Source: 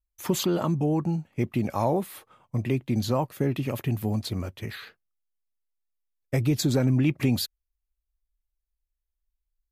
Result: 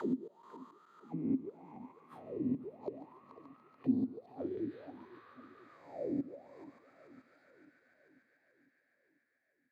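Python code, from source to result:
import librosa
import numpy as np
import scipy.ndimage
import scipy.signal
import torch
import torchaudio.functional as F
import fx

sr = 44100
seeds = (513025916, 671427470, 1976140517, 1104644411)

p1 = fx.spec_swells(x, sr, rise_s=1.57)
p2 = fx.highpass(p1, sr, hz=140.0, slope=12, at=(2.56, 3.94))
p3 = fx.gate_flip(p2, sr, shuts_db=-16.0, range_db=-36)
p4 = p3 + fx.echo_heads(p3, sr, ms=144, heads='first and third', feedback_pct=74, wet_db=-14.5, dry=0)
p5 = fx.auto_wah(p4, sr, base_hz=260.0, top_hz=1700.0, q=12.0, full_db=-26.0, direction='down')
p6 = fx.echo_warbled(p5, sr, ms=496, feedback_pct=57, rate_hz=2.8, cents=210, wet_db=-18.0)
y = p6 * librosa.db_to_amplitude(7.0)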